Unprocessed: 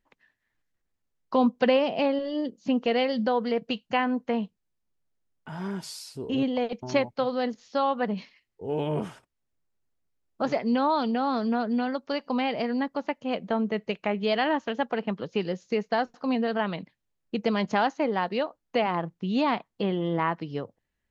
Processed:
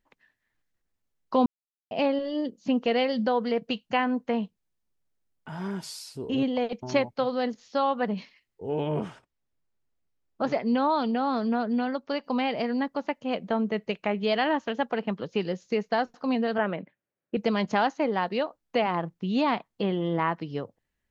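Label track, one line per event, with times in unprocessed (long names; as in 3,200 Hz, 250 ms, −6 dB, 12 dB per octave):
1.460000	1.910000	silence
8.690000	12.240000	high-frequency loss of the air 59 metres
16.580000	17.370000	loudspeaker in its box 140–2,600 Hz, peaks and dips at 370 Hz +4 dB, 560 Hz +7 dB, 1,000 Hz −3 dB, 1,500 Hz +4 dB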